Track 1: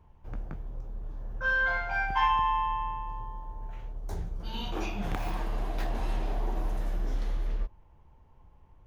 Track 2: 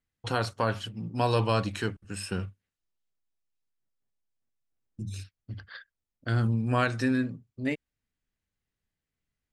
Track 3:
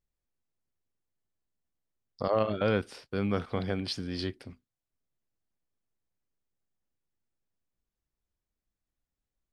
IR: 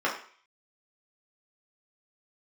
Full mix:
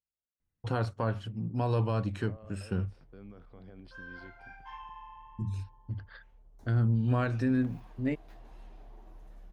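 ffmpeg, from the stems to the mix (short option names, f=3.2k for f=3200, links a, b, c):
-filter_complex "[0:a]flanger=delay=3.7:depth=6.8:regen=-43:speed=1.3:shape=triangular,adelay=2500,volume=-17dB[a];[1:a]lowshelf=f=190:g=7,adelay=400,volume=-2.5dB[b];[2:a]highpass=42,alimiter=level_in=1.5dB:limit=-24dB:level=0:latency=1:release=87,volume=-1.5dB,volume=-15dB[c];[b][c]amix=inputs=2:normalize=0,highshelf=f=2.2k:g=-12,alimiter=limit=-19dB:level=0:latency=1:release=160,volume=0dB[d];[a][d]amix=inputs=2:normalize=0"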